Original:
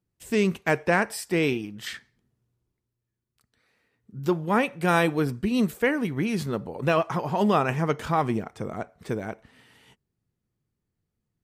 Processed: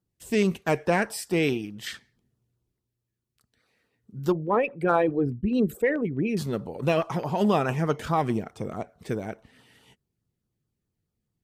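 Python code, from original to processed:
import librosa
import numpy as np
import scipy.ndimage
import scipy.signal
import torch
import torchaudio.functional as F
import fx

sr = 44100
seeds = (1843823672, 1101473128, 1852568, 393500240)

y = fx.envelope_sharpen(x, sr, power=2.0, at=(4.32, 6.37))
y = fx.filter_lfo_notch(y, sr, shape='saw_down', hz=4.7, low_hz=780.0, high_hz=2600.0, q=2.1)
y = fx.cheby_harmonics(y, sr, harmonics=(4,), levels_db=(-35,), full_scale_db=-11.0)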